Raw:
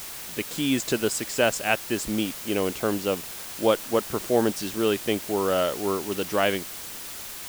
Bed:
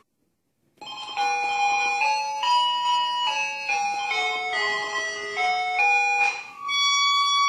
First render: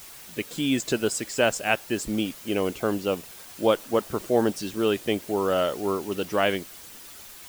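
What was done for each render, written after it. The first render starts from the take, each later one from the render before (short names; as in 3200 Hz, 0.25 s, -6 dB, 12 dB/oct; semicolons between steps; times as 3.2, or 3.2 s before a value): denoiser 8 dB, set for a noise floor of -38 dBFS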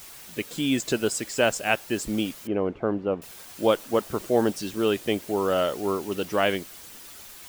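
2.47–3.22 LPF 1300 Hz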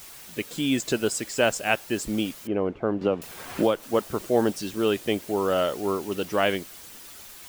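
3.01–3.83 three-band squash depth 100%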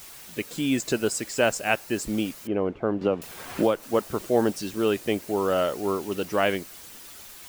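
dynamic EQ 3300 Hz, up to -5 dB, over -48 dBFS, Q 5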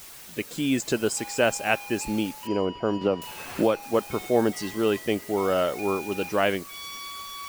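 add bed -18 dB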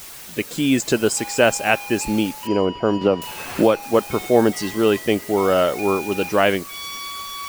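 gain +6.5 dB; limiter -2 dBFS, peak gain reduction 1.5 dB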